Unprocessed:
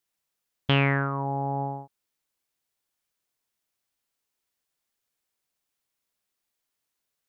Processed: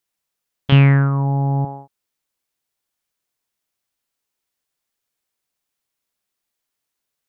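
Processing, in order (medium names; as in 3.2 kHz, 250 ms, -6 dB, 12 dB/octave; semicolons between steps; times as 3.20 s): 0.72–1.65 s: tone controls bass +14 dB, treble +6 dB; trim +2 dB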